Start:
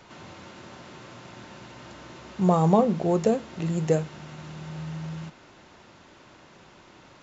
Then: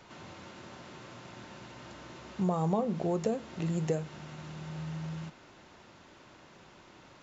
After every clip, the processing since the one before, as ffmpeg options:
ffmpeg -i in.wav -af "acompressor=threshold=-24dB:ratio=3,volume=-3.5dB" out.wav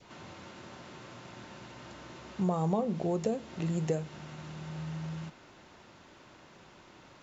ffmpeg -i in.wav -af "adynamicequalizer=threshold=0.00447:dfrequency=1300:dqfactor=1.2:tfrequency=1300:tqfactor=1.2:attack=5:release=100:ratio=0.375:range=2:mode=cutabove:tftype=bell" out.wav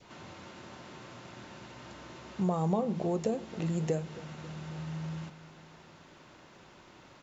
ffmpeg -i in.wav -filter_complex "[0:a]asplit=2[link_01][link_02];[link_02]adelay=271,lowpass=frequency=2000:poles=1,volume=-17dB,asplit=2[link_03][link_04];[link_04]adelay=271,lowpass=frequency=2000:poles=1,volume=0.54,asplit=2[link_05][link_06];[link_06]adelay=271,lowpass=frequency=2000:poles=1,volume=0.54,asplit=2[link_07][link_08];[link_08]adelay=271,lowpass=frequency=2000:poles=1,volume=0.54,asplit=2[link_09][link_10];[link_10]adelay=271,lowpass=frequency=2000:poles=1,volume=0.54[link_11];[link_01][link_03][link_05][link_07][link_09][link_11]amix=inputs=6:normalize=0" out.wav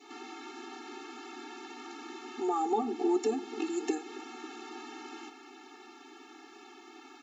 ffmpeg -i in.wav -af "afftfilt=real='re*eq(mod(floor(b*sr/1024/230),2),1)':imag='im*eq(mod(floor(b*sr/1024/230),2),1)':win_size=1024:overlap=0.75,volume=7dB" out.wav

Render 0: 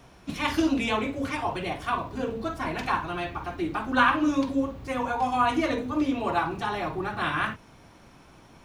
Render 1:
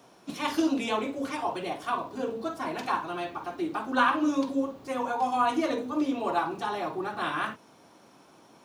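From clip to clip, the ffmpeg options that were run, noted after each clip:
ffmpeg -i in.wav -af "highpass=250,equalizer=frequency=2100:width_type=o:width=1.2:gain=-6.5" out.wav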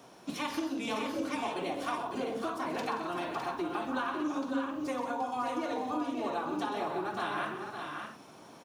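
ffmpeg -i in.wav -af "acompressor=threshold=-34dB:ratio=6,aecho=1:1:129|176|554|607:0.299|0.2|0.422|0.447,volume=1.5dB" out.wav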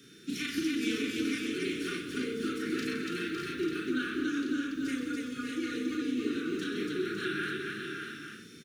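ffmpeg -i in.wav -af "asuperstop=centerf=780:order=12:qfactor=0.84,aecho=1:1:34.99|285.7:0.794|0.794,aeval=exprs='val(0)+0.000794*sin(2*PI*3600*n/s)':channel_layout=same,volume=1dB" out.wav

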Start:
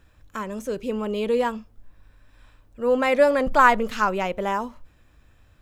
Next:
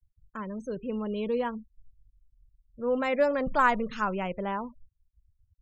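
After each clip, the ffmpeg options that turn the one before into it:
ffmpeg -i in.wav -af "afftfilt=real='re*gte(hypot(re,im),0.0178)':imag='im*gte(hypot(re,im),0.0178)':win_size=1024:overlap=0.75,equalizer=frequency=160:width=1.5:gain=7.5,volume=-7.5dB" out.wav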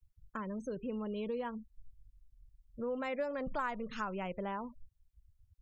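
ffmpeg -i in.wav -af "acompressor=threshold=-39dB:ratio=3,volume=1dB" out.wav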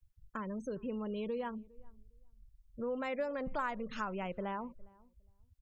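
ffmpeg -i in.wav -filter_complex "[0:a]asplit=2[link_01][link_02];[link_02]adelay=408,lowpass=frequency=830:poles=1,volume=-23dB,asplit=2[link_03][link_04];[link_04]adelay=408,lowpass=frequency=830:poles=1,volume=0.19[link_05];[link_01][link_03][link_05]amix=inputs=3:normalize=0" out.wav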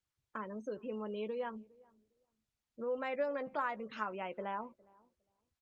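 ffmpeg -i in.wav -filter_complex "[0:a]highpass=290,lowpass=4700,asplit=2[link_01][link_02];[link_02]adelay=14,volume=-10dB[link_03];[link_01][link_03]amix=inputs=2:normalize=0" -ar 48000 -c:a libopus -b:a 32k out.opus

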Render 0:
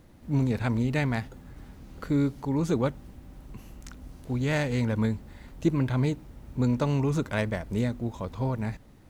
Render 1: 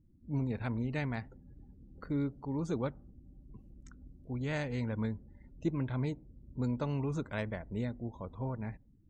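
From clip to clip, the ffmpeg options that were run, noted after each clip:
ffmpeg -i in.wav -af "afftdn=noise_reduction=28:noise_floor=-47,volume=-8.5dB" out.wav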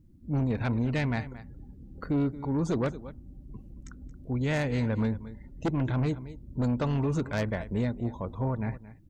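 ffmpeg -i in.wav -af "aecho=1:1:225:0.141,aeval=exprs='0.0891*(cos(1*acos(clip(val(0)/0.0891,-1,1)))-cos(1*PI/2))+0.0398*(cos(5*acos(clip(val(0)/0.0891,-1,1)))-cos(5*PI/2))+0.0126*(cos(7*acos(clip(val(0)/0.0891,-1,1)))-cos(7*PI/2))':channel_layout=same,volume=1dB" out.wav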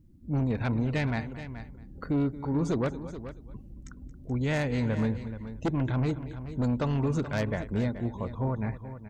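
ffmpeg -i in.wav -af "aecho=1:1:428:0.237" out.wav

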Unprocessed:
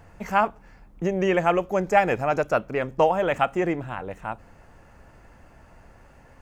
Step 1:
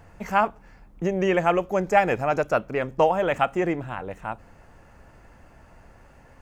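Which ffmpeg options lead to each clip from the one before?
ffmpeg -i in.wav -af anull out.wav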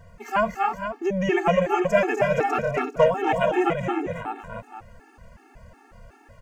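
ffmpeg -i in.wav -filter_complex "[0:a]asplit=2[link_01][link_02];[link_02]aecho=0:1:247|275|425|473:0.501|0.473|0.1|0.355[link_03];[link_01][link_03]amix=inputs=2:normalize=0,afftfilt=real='re*gt(sin(2*PI*2.7*pts/sr)*(1-2*mod(floor(b*sr/1024/230),2)),0)':imag='im*gt(sin(2*PI*2.7*pts/sr)*(1-2*mod(floor(b*sr/1024/230),2)),0)':win_size=1024:overlap=0.75,volume=2.5dB" out.wav

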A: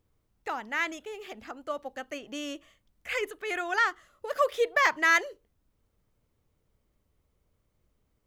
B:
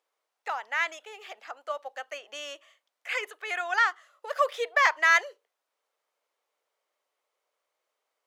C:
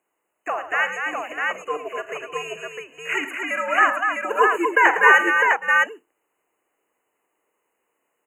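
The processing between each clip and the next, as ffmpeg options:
ffmpeg -i in.wav -af "highpass=frequency=570:width=0.5412,highpass=frequency=570:width=1.3066,highshelf=frequency=11000:gain=-11,volume=2dB" out.wav
ffmpeg -i in.wav -af "aecho=1:1:41|80|108|244|592|655:0.211|0.119|0.251|0.531|0.15|0.708,afreqshift=-130,afftfilt=real='re*(1-between(b*sr/4096,3000,6400))':imag='im*(1-between(b*sr/4096,3000,6400))':win_size=4096:overlap=0.75,volume=6dB" out.wav

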